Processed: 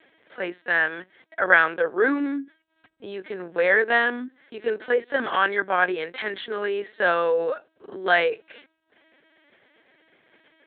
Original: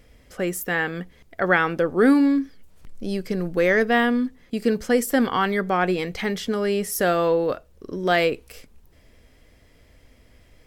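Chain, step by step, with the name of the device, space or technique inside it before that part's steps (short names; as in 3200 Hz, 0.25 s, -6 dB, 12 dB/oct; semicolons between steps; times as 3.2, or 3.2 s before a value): talking toy (LPC vocoder at 8 kHz pitch kept; HPF 410 Hz 12 dB/oct; bell 1600 Hz +8 dB 0.27 oct)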